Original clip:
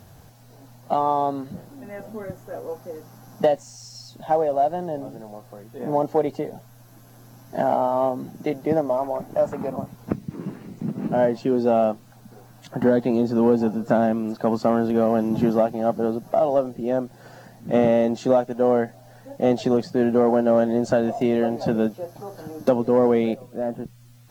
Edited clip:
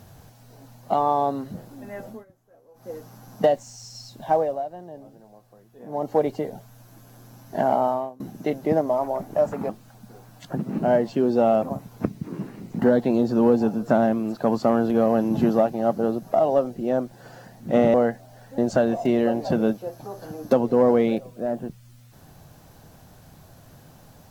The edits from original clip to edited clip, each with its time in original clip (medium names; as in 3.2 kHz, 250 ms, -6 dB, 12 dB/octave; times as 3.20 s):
2.08–2.91 s: dip -22 dB, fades 0.17 s
4.37–6.17 s: dip -11.5 dB, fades 0.27 s
7.90–8.20 s: fade out quadratic, to -21.5 dB
9.69–10.86 s: swap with 11.91–12.79 s
17.94–18.68 s: delete
19.32–20.74 s: delete